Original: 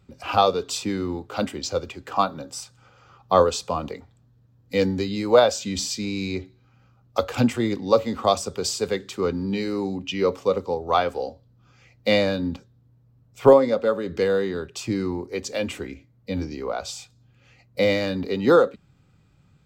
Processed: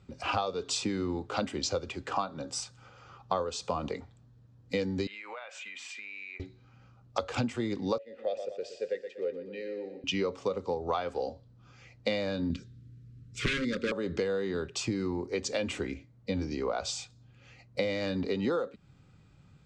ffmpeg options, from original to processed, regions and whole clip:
-filter_complex "[0:a]asettb=1/sr,asplit=3[a][b][c];[a]atrim=end=5.074[d];[b]atrim=start=5.07:end=6.4,asetpts=PTS-STARTPTS,afade=t=in:d=0.004:c=qsin,afade=t=out:st=1.326:d=0.004:c=qsin,highpass=1.2k,highshelf=f=3.4k:t=q:w=3:g=-12.5,acompressor=threshold=-39dB:ratio=10:attack=3.2:release=140:knee=1:detection=peak[e];[c]atrim=start=6.396[f];[d][e]acrossfade=d=0.004:c1=hsin:c2=qsin[g];[g][f]acrossfade=d=0.004:c1=qsin:c2=hsin,asettb=1/sr,asplit=3[h][i][j];[h]atrim=end=7.984[k];[i]atrim=start=7.98:end=10.04,asetpts=PTS-STARTPTS,afade=t=in:d=0.004:c=qsin,afade=t=out:st=2.056:d=0.004:c=qsin,agate=range=-33dB:threshold=-35dB:ratio=3:release=100:detection=peak,asplit=3[l][m][n];[l]bandpass=f=530:t=q:w=8,volume=0dB[o];[m]bandpass=f=1.84k:t=q:w=8,volume=-6dB[p];[n]bandpass=f=2.48k:t=q:w=8,volume=-9dB[q];[o][p][q]amix=inputs=3:normalize=0,aecho=1:1:120|240|360|480|600:0.282|0.132|0.0623|0.0293|0.0138,atrim=end_sample=90846[r];[j]atrim=start=10.036[s];[k][r]acrossfade=d=0.004:c1=hsin:c2=qsin[t];[t][s]acrossfade=d=0.004:c1=qsin:c2=hsin,asettb=1/sr,asplit=3[u][v][w];[u]atrim=end=12.504[x];[v]atrim=start=12.5:end=13.92,asetpts=PTS-STARTPTS,afade=t=in:d=0.004:c=qsin,afade=t=out:st=1.416:d=0.004:c=qsin,aeval=exprs='0.15*(abs(mod(val(0)/0.15+3,4)-2)-1)':c=same,acontrast=77,asuperstop=centerf=780:order=4:qfactor=0.64[y];[w]atrim=start=13.916[z];[x][y]acrossfade=d=0.004:c1=hsin:c2=qsin[aa];[aa][z]acrossfade=d=0.004:c1=qsin:c2=hsin,lowpass=f=8.2k:w=0.5412,lowpass=f=8.2k:w=1.3066,acompressor=threshold=-27dB:ratio=12"

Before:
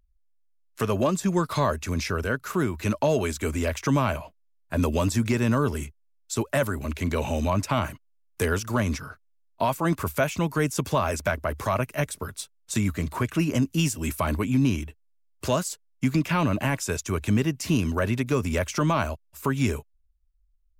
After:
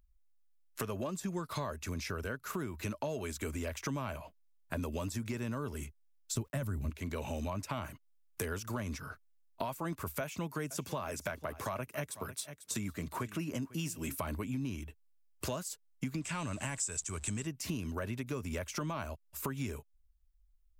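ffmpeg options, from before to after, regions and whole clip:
-filter_complex "[0:a]asettb=1/sr,asplit=3[a][b][c];[a]atrim=end=6.344[d];[b]atrim=start=6.34:end=6.9,asetpts=PTS-STARTPTS,afade=t=in:d=0.004:c=qsin,afade=t=out:st=0.556:d=0.004:c=qsin,aeval=exprs='val(0)*gte(abs(val(0)),0.00237)':c=same,bass=f=250:g=14,treble=f=4k:g=2[e];[c]atrim=start=6.896[f];[d][e]acrossfade=d=0.004:c1=hsin:c2=qsin[g];[g][f]acrossfade=d=0.004:c1=qsin:c2=hsin,asettb=1/sr,asplit=3[h][i][j];[h]atrim=end=10.214[k];[i]atrim=start=10.21:end=14.18,asetpts=PTS-STARTPTS,afade=t=in:d=0.004:c=qsin,afade=t=out:st=3.966:d=0.004:c=qsin,highpass=100,aecho=1:1:496:0.106,atrim=end_sample=175077[l];[j]atrim=start=14.176[m];[k][l]acrossfade=d=0.004:c1=hsin:c2=qsin[n];[n][m]acrossfade=d=0.004:c1=qsin:c2=hsin,asettb=1/sr,asplit=3[o][p][q];[o]atrim=end=16.224[r];[p]atrim=start=16.22:end=17.47,asetpts=PTS-STARTPTS,afade=t=in:d=0.004:c=qsin,afade=t=out:st=1.246:d=0.004:c=qsin,aeval=exprs='val(0)+0.5*0.00944*sgn(val(0))':c=same,lowpass=f=7.9k:t=q:w=9.4,equalizer=f=360:w=0.54:g=-5[s];[q]atrim=start=17.466[t];[r][s]acrossfade=d=0.004:c1=hsin:c2=qsin[u];[u][t]acrossfade=d=0.004:c1=qsin:c2=hsin,highshelf=f=12k:g=6,acompressor=threshold=-35dB:ratio=4,volume=-1.5dB"

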